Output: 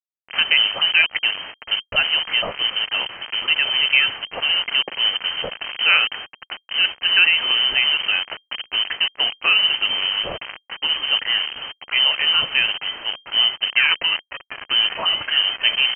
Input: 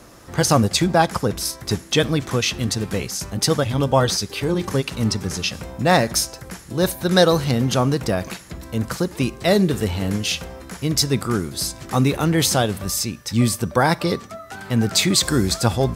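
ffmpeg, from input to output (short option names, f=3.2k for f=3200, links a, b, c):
-filter_complex "[0:a]bandreject=f=50:t=h:w=6,bandreject=f=100:t=h:w=6,bandreject=f=150:t=h:w=6,bandreject=f=200:t=h:w=6,bandreject=f=250:t=h:w=6,bandreject=f=300:t=h:w=6,asplit=2[a][b];[b]acompressor=threshold=-28dB:ratio=8,volume=0.5dB[c];[a][c]amix=inputs=2:normalize=0,acrusher=bits=3:mix=0:aa=0.000001,lowpass=f=2.7k:t=q:w=0.5098,lowpass=f=2.7k:t=q:w=0.6013,lowpass=f=2.7k:t=q:w=0.9,lowpass=f=2.7k:t=q:w=2.563,afreqshift=-3200,volume=-1.5dB"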